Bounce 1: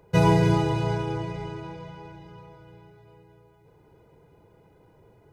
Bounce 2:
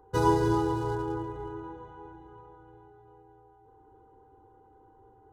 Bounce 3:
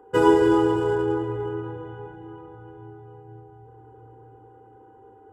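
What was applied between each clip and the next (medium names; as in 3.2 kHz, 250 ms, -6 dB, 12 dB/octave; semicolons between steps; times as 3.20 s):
local Wiener filter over 9 samples; whistle 780 Hz -55 dBFS; static phaser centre 620 Hz, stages 6
reverberation RT60 3.5 s, pre-delay 3 ms, DRR 15 dB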